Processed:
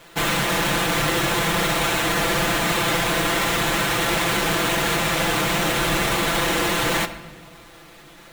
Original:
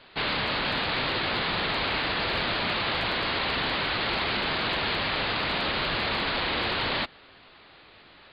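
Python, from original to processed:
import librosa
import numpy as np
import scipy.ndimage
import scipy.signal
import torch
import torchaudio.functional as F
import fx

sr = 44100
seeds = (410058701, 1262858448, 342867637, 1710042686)

y = fx.halfwave_hold(x, sr)
y = y + 0.77 * np.pad(y, (int(5.9 * sr / 1000.0), 0))[:len(y)]
y = fx.room_shoebox(y, sr, seeds[0], volume_m3=1200.0, walls='mixed', distance_m=0.52)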